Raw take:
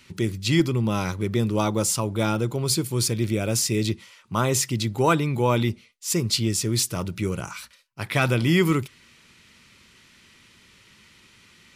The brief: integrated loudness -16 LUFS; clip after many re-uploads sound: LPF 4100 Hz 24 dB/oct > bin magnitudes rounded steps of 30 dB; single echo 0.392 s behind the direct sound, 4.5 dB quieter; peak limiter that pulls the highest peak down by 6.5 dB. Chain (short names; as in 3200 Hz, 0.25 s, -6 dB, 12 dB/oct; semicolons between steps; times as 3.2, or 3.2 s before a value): limiter -15.5 dBFS; LPF 4100 Hz 24 dB/oct; echo 0.392 s -4.5 dB; bin magnitudes rounded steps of 30 dB; gain +11 dB